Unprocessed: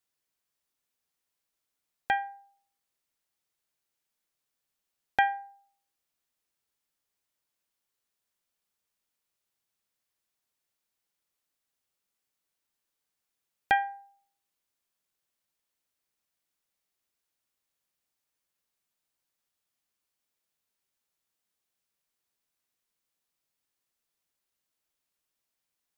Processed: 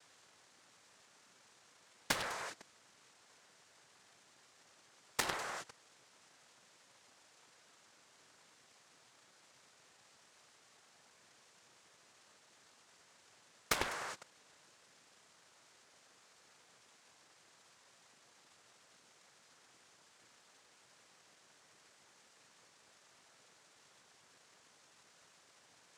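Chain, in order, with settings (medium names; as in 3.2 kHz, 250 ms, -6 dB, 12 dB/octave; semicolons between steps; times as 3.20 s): compression 20:1, threshold -32 dBFS, peak gain reduction 14 dB; echo whose repeats swap between lows and highs 101 ms, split 1.5 kHz, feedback 53%, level -3.5 dB; bit crusher 8-bit; band noise 330–3600 Hz -69 dBFS; noise-vocoded speech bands 3; Chebyshev shaper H 7 -11 dB, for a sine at -19.5 dBFS; trim +3 dB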